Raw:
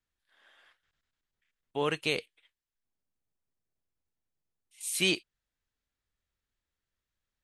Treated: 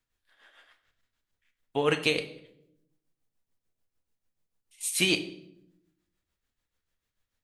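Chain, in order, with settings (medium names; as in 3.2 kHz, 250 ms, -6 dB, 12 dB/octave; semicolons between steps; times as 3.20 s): tremolo 6.8 Hz, depth 65%; on a send: reverberation RT60 0.80 s, pre-delay 4 ms, DRR 6.5 dB; on the sum: trim +6 dB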